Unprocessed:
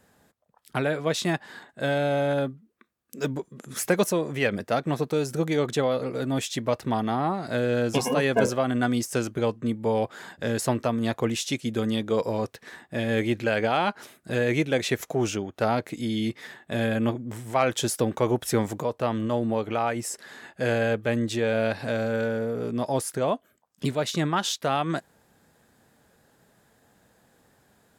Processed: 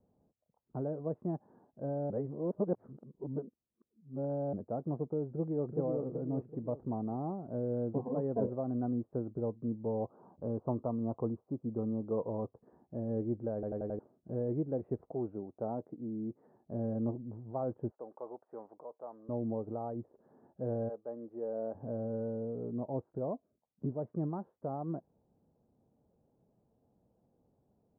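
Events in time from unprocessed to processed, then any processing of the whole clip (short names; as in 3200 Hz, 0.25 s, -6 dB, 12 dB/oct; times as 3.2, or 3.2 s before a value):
2.1–4.53 reverse
5.33–5.78 echo throw 0.38 s, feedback 45%, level -4 dB
10–12.59 resonant high shelf 1600 Hz -11 dB, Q 3
13.54 stutter in place 0.09 s, 5 plays
15.11–16.56 HPF 200 Hz 6 dB/oct
17.91–19.29 HPF 790 Hz
20.88–21.74 HPF 640 Hz -> 290 Hz
whole clip: Bessel low-pass 540 Hz, order 6; gain -8 dB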